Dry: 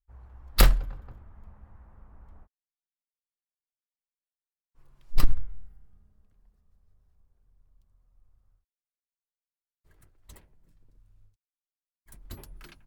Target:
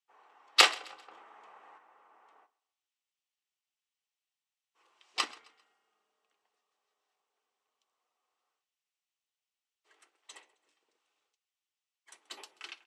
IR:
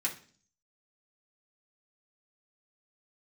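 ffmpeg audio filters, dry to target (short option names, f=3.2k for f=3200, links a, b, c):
-filter_complex "[0:a]equalizer=f=1.7k:t=o:w=0.77:g=2,asplit=3[a][b][c];[a]afade=t=out:st=1.11:d=0.02[d];[b]acontrast=76,afade=t=in:st=1.11:d=0.02,afade=t=out:st=1.77:d=0.02[e];[c]afade=t=in:st=1.77:d=0.02[f];[d][e][f]amix=inputs=3:normalize=0,highpass=f=470:w=0.5412,highpass=f=470:w=1.3066,equalizer=f=560:t=q:w=4:g=-8,equalizer=f=1.6k:t=q:w=4:g=-7,equalizer=f=3k:t=q:w=4:g=5,lowpass=f=7.4k:w=0.5412,lowpass=f=7.4k:w=1.3066,aecho=1:1:132|264|396:0.075|0.0277|0.0103,asplit=2[g][h];[1:a]atrim=start_sample=2205,atrim=end_sample=3087[i];[h][i]afir=irnorm=-1:irlink=0,volume=-9.5dB[j];[g][j]amix=inputs=2:normalize=0,volume=4dB"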